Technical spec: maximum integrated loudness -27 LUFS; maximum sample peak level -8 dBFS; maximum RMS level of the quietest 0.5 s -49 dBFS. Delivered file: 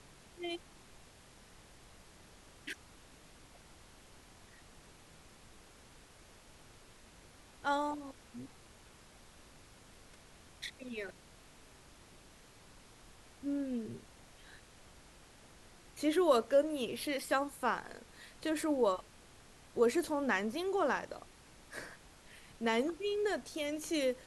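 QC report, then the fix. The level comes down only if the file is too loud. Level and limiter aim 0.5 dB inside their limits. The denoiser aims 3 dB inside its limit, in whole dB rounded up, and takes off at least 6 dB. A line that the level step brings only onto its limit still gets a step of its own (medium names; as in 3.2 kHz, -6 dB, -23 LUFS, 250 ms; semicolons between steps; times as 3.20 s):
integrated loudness -35.5 LUFS: pass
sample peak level -17.0 dBFS: pass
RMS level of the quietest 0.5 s -59 dBFS: pass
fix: none needed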